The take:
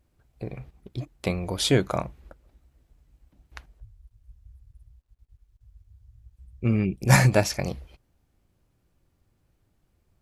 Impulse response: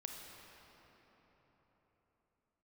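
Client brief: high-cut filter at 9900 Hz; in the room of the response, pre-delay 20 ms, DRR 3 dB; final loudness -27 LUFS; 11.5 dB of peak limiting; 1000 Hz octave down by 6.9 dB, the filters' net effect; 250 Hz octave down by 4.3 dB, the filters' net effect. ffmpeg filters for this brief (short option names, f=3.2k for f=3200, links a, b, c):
-filter_complex "[0:a]lowpass=9.9k,equalizer=f=250:t=o:g=-6,equalizer=f=1k:t=o:g=-9,alimiter=limit=-17.5dB:level=0:latency=1,asplit=2[a][b];[1:a]atrim=start_sample=2205,adelay=20[c];[b][c]afir=irnorm=-1:irlink=0,volume=-0.5dB[d];[a][d]amix=inputs=2:normalize=0,volume=4.5dB"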